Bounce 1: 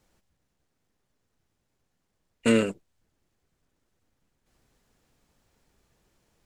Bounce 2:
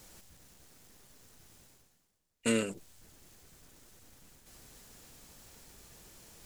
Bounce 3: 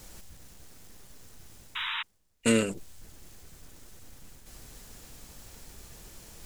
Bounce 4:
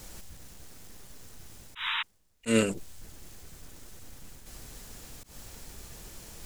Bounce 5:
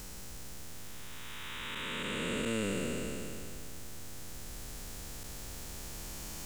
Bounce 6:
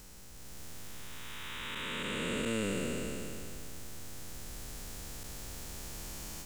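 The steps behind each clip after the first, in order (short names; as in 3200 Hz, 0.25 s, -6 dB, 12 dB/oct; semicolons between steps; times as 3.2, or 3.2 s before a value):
high shelf 4400 Hz +12 dB; reverse; upward compressor, threshold -30 dBFS; reverse; gain -8.5 dB
low shelf 72 Hz +9 dB; painted sound noise, 1.75–2.03, 880–3900 Hz -38 dBFS; gain +5 dB
auto swell 0.126 s; gain +2.5 dB
time blur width 0.985 s; gain +4.5 dB
AGC gain up to 7 dB; gain -7 dB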